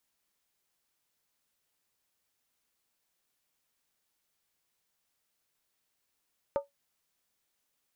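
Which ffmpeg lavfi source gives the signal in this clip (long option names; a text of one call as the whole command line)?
ffmpeg -f lavfi -i "aevalsrc='0.0794*pow(10,-3*t/0.15)*sin(2*PI*564*t)+0.0316*pow(10,-3*t/0.119)*sin(2*PI*899*t)+0.0126*pow(10,-3*t/0.103)*sin(2*PI*1204.7*t)+0.00501*pow(10,-3*t/0.099)*sin(2*PI*1294.9*t)+0.002*pow(10,-3*t/0.092)*sin(2*PI*1496.3*t)':duration=0.63:sample_rate=44100" out.wav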